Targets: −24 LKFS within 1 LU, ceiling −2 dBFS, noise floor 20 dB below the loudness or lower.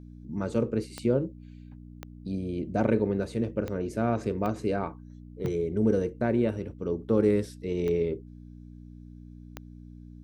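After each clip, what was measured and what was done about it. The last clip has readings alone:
number of clicks 7; mains hum 60 Hz; hum harmonics up to 300 Hz; level of the hum −44 dBFS; integrated loudness −29.0 LKFS; sample peak −12.0 dBFS; target loudness −24.0 LKFS
→ click removal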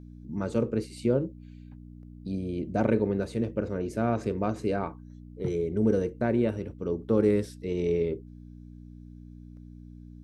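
number of clicks 0; mains hum 60 Hz; hum harmonics up to 300 Hz; level of the hum −44 dBFS
→ hum removal 60 Hz, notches 5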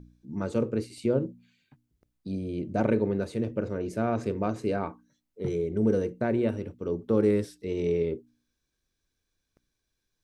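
mains hum none found; integrated loudness −29.0 LKFS; sample peak −12.5 dBFS; target loudness −24.0 LKFS
→ level +5 dB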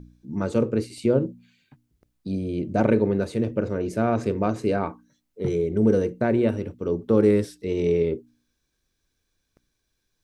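integrated loudness −24.0 LKFS; sample peak −7.5 dBFS; background noise floor −77 dBFS

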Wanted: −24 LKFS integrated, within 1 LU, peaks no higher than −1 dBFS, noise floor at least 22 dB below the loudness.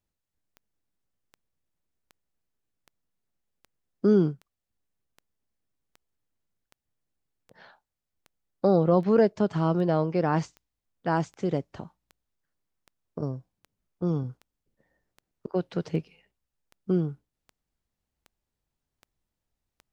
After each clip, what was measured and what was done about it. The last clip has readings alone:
number of clicks 26; integrated loudness −26.5 LKFS; sample peak −10.0 dBFS; target loudness −24.0 LKFS
→ click removal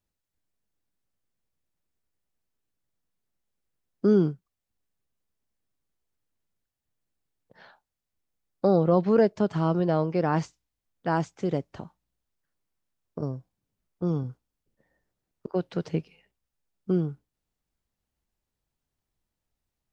number of clicks 0; integrated loudness −26.5 LKFS; sample peak −10.0 dBFS; target loudness −24.0 LKFS
→ level +2.5 dB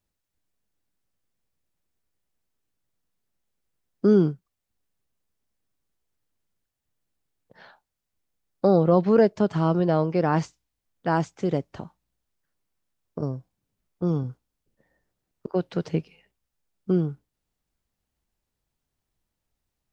integrated loudness −24.0 LKFS; sample peak −7.5 dBFS; background noise floor −83 dBFS

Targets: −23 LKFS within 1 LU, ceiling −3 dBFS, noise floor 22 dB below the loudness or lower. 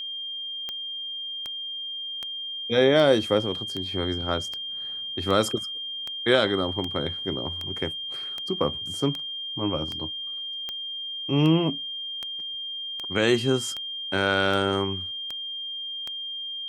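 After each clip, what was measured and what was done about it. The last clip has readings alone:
number of clicks 21; interfering tone 3,200 Hz; level of the tone −31 dBFS; integrated loudness −26.5 LKFS; sample peak −5.0 dBFS; target loudness −23.0 LKFS
→ click removal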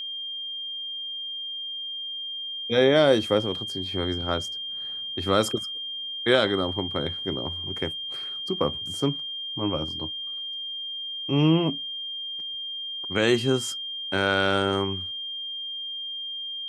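number of clicks 0; interfering tone 3,200 Hz; level of the tone −31 dBFS
→ notch filter 3,200 Hz, Q 30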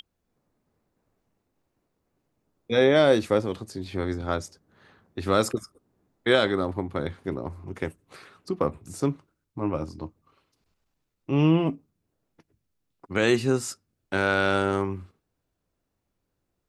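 interfering tone none found; integrated loudness −25.5 LKFS; sample peak −4.5 dBFS; target loudness −23.0 LKFS
→ level +2.5 dB
brickwall limiter −3 dBFS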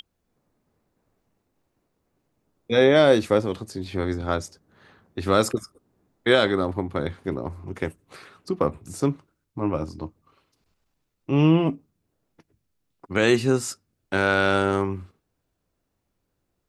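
integrated loudness −23.5 LKFS; sample peak −3.0 dBFS; background noise floor −77 dBFS

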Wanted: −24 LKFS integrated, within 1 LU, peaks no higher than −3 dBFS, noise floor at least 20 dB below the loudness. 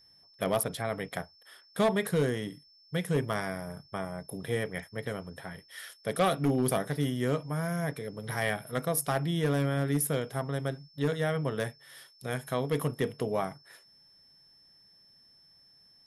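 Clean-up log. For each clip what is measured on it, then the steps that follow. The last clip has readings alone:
share of clipped samples 0.4%; peaks flattened at −19.5 dBFS; interfering tone 5,300 Hz; level of the tone −58 dBFS; integrated loudness −31.5 LKFS; sample peak −19.5 dBFS; target loudness −24.0 LKFS
→ clipped peaks rebuilt −19.5 dBFS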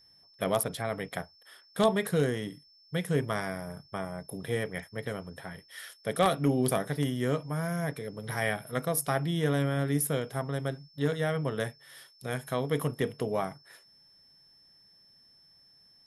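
share of clipped samples 0.0%; interfering tone 5,300 Hz; level of the tone −58 dBFS
→ notch filter 5,300 Hz, Q 30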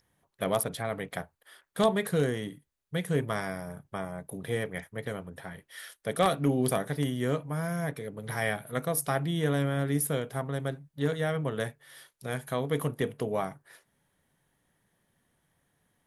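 interfering tone none found; integrated loudness −31.0 LKFS; sample peak −10.5 dBFS; target loudness −24.0 LKFS
→ level +7 dB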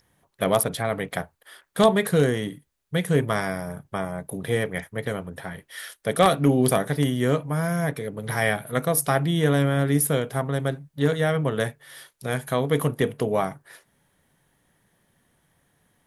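integrated loudness −24.5 LKFS; sample peak −3.5 dBFS; background noise floor −70 dBFS

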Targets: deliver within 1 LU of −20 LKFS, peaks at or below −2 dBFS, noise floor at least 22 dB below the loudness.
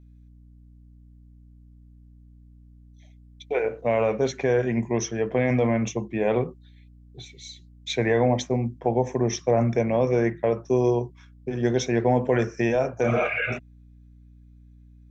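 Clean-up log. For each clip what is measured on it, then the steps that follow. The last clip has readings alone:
mains hum 60 Hz; hum harmonics up to 300 Hz; level of the hum −48 dBFS; integrated loudness −24.5 LKFS; sample peak −9.0 dBFS; target loudness −20.0 LKFS
→ hum removal 60 Hz, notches 5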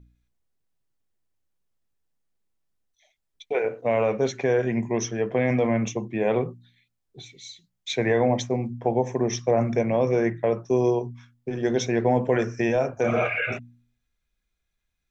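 mains hum none found; integrated loudness −24.5 LKFS; sample peak −8.5 dBFS; target loudness −20.0 LKFS
→ level +4.5 dB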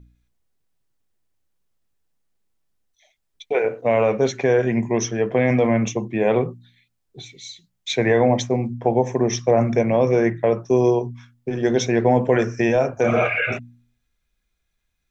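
integrated loudness −20.0 LKFS; sample peak −4.0 dBFS; background noise floor −74 dBFS

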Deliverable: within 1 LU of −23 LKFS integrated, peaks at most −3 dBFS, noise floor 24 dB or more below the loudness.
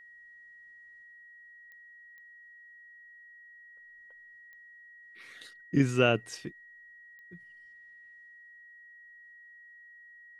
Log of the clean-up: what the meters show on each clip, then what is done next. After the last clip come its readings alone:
number of clicks 4; interfering tone 1,900 Hz; level of the tone −51 dBFS; integrated loudness −28.5 LKFS; sample peak −10.0 dBFS; target loudness −23.0 LKFS
→ click removal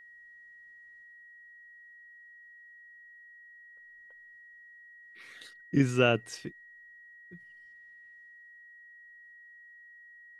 number of clicks 0; interfering tone 1,900 Hz; level of the tone −51 dBFS
→ notch filter 1,900 Hz, Q 30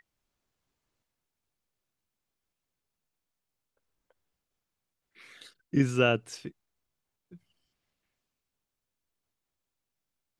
interfering tone none found; integrated loudness −27.0 LKFS; sample peak −10.0 dBFS; target loudness −23.0 LKFS
→ level +4 dB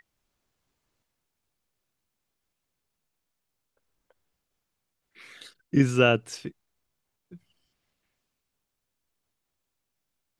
integrated loudness −23.0 LKFS; sample peak −6.0 dBFS; background noise floor −82 dBFS

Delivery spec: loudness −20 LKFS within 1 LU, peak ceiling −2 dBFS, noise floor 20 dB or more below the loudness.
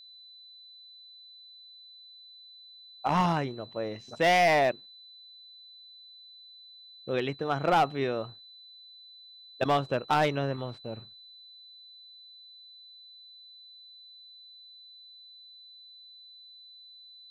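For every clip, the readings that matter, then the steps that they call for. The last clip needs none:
share of clipped samples 0.4%; peaks flattened at −18.0 dBFS; interfering tone 4,000 Hz; level of the tone −49 dBFS; integrated loudness −28.0 LKFS; sample peak −18.0 dBFS; target loudness −20.0 LKFS
→ clipped peaks rebuilt −18 dBFS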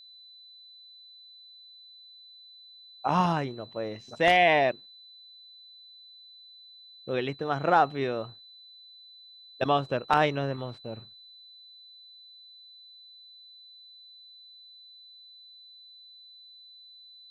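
share of clipped samples 0.0%; interfering tone 4,000 Hz; level of the tone −49 dBFS
→ notch filter 4,000 Hz, Q 30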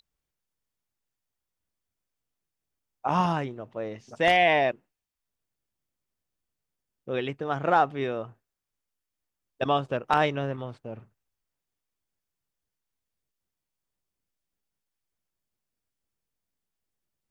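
interfering tone none found; integrated loudness −26.5 LKFS; sample peak −9.0 dBFS; target loudness −20.0 LKFS
→ level +6.5 dB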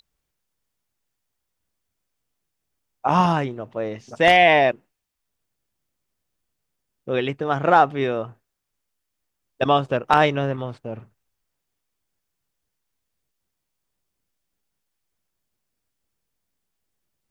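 integrated loudness −20.0 LKFS; sample peak −2.5 dBFS; background noise floor −80 dBFS

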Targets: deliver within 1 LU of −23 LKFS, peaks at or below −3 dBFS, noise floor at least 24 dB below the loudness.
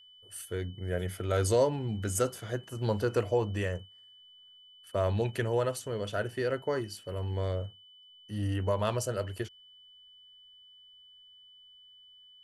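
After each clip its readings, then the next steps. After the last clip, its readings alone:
interfering tone 3,000 Hz; level of the tone −54 dBFS; integrated loudness −32.0 LKFS; sample peak −14.5 dBFS; target loudness −23.0 LKFS
→ notch filter 3,000 Hz, Q 30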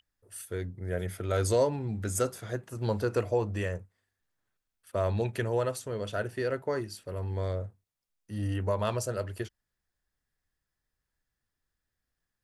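interfering tone none found; integrated loudness −32.0 LKFS; sample peak −14.5 dBFS; target loudness −23.0 LKFS
→ level +9 dB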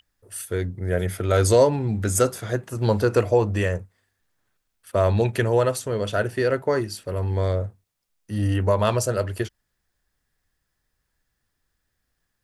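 integrated loudness −23.0 LKFS; sample peak −5.5 dBFS; background noise floor −77 dBFS

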